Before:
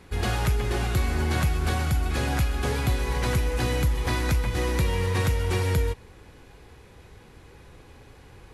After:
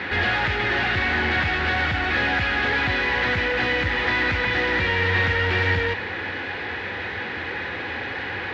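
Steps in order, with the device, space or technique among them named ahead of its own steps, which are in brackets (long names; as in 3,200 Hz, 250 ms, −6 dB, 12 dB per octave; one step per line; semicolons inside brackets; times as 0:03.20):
overdrive pedal into a guitar cabinet (mid-hump overdrive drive 36 dB, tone 3,400 Hz, clips at −14 dBFS; loudspeaker in its box 79–3,900 Hz, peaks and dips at 90 Hz +7 dB, 140 Hz −8 dB, 420 Hz −5 dB, 630 Hz −4 dB, 1,100 Hz −7 dB, 1,800 Hz +9 dB)
level −1.5 dB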